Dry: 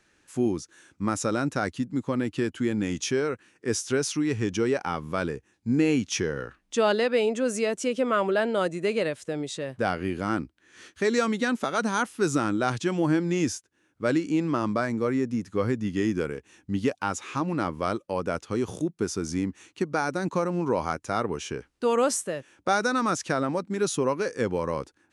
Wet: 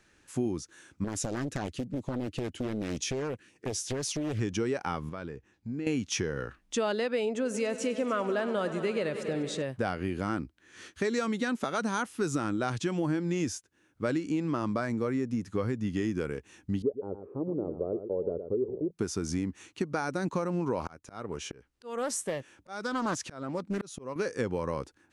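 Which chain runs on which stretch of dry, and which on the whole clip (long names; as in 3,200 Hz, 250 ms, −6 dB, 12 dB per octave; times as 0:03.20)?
0:01.04–0:04.40: auto-filter notch sine 5.3 Hz 800–1,600 Hz + downward compressor 12 to 1, threshold −27 dBFS + highs frequency-modulated by the lows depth 0.91 ms
0:05.09–0:05.87: high-frequency loss of the air 84 metres + downward compressor 2 to 1, threshold −44 dBFS
0:07.25–0:09.62: high-shelf EQ 6,500 Hz −5 dB + echo machine with several playback heads 97 ms, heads all three, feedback 57%, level −17.5 dB
0:16.82–0:18.91: transistor ladder low-pass 620 Hz, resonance 45% + parametric band 410 Hz +12 dB 0.47 octaves + single-tap delay 113 ms −11 dB
0:20.80–0:24.16: volume swells 504 ms + highs frequency-modulated by the lows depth 0.32 ms
whole clip: low-shelf EQ 110 Hz +6 dB; downward compressor 3 to 1, threshold −28 dBFS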